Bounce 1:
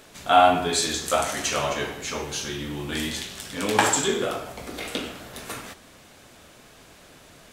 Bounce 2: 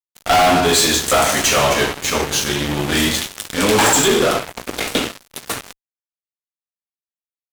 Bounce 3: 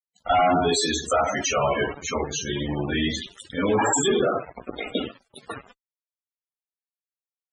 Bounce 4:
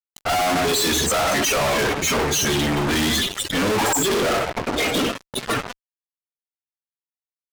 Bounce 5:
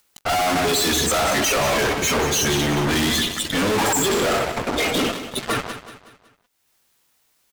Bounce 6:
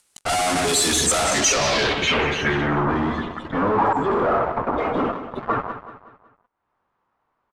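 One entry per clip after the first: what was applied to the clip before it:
fuzz pedal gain 28 dB, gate −34 dBFS; level +2.5 dB
spectral peaks only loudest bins 32; level −5.5 dB
fuzz pedal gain 45 dB, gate −52 dBFS; level −6 dB
upward compression, threshold −39 dBFS; on a send: repeating echo 186 ms, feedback 42%, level −11.5 dB
low-pass filter sweep 9,200 Hz → 1,100 Hz, 0:01.22–0:02.92; level −1.5 dB

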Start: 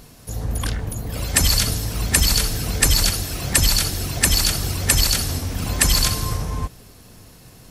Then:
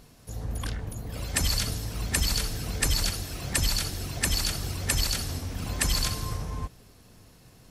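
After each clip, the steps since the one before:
high-shelf EQ 9,000 Hz −5.5 dB
level −8 dB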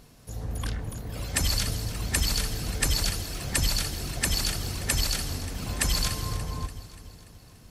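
delay that swaps between a low-pass and a high-pass 145 ms, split 890 Hz, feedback 75%, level −11.5 dB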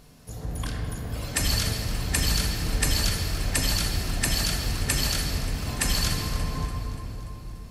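rectangular room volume 210 cubic metres, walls hard, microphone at 0.44 metres

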